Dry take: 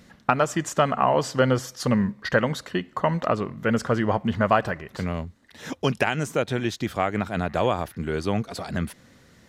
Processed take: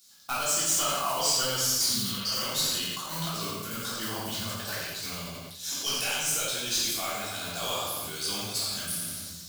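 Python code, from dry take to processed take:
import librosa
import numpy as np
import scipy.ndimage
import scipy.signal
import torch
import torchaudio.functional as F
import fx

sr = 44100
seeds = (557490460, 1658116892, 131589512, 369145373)

y = fx.law_mismatch(x, sr, coded='A')
y = scipy.signal.lfilter([1.0, -0.97], [1.0], y)
y = fx.spec_repair(y, sr, seeds[0], start_s=1.84, length_s=0.54, low_hz=410.0, high_hz=4300.0, source='both')
y = fx.high_shelf_res(y, sr, hz=3200.0, db=8.0, q=1.5)
y = fx.notch(y, sr, hz=1900.0, q=5.5)
y = fx.over_compress(y, sr, threshold_db=-45.0, ratio=-0.5, at=(2.72, 5.06), fade=0.02)
y = 10.0 ** (-27.5 / 20.0) * np.tanh(y / 10.0 ** (-27.5 / 20.0))
y = fx.echo_feedback(y, sr, ms=86, feedback_pct=47, wet_db=-7.5)
y = fx.room_shoebox(y, sr, seeds[1], volume_m3=320.0, walls='mixed', distance_m=3.4)
y = fx.sustainer(y, sr, db_per_s=25.0)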